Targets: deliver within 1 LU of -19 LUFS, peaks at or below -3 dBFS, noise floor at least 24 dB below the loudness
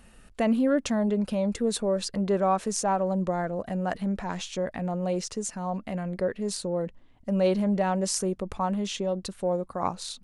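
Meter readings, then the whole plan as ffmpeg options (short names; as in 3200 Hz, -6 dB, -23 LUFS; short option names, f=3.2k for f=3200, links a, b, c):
loudness -28.0 LUFS; peak -10.0 dBFS; loudness target -19.0 LUFS
-> -af "volume=9dB,alimiter=limit=-3dB:level=0:latency=1"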